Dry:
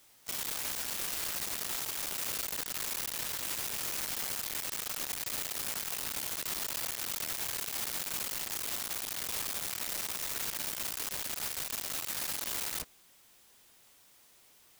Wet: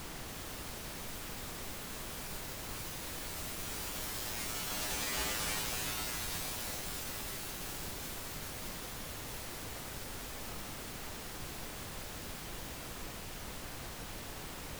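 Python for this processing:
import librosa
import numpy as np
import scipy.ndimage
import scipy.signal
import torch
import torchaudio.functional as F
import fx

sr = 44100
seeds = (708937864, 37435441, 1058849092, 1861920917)

y = fx.doppler_pass(x, sr, speed_mps=14, closest_m=7.0, pass_at_s=5.27)
y = fx.comb_fb(y, sr, f0_hz=57.0, decay_s=0.43, harmonics='odd', damping=0.0, mix_pct=100)
y = fx.dmg_noise_colour(y, sr, seeds[0], colour='pink', level_db=-60.0)
y = fx.slew_limit(y, sr, full_power_hz=20.0)
y = y * 10.0 ** (16.0 / 20.0)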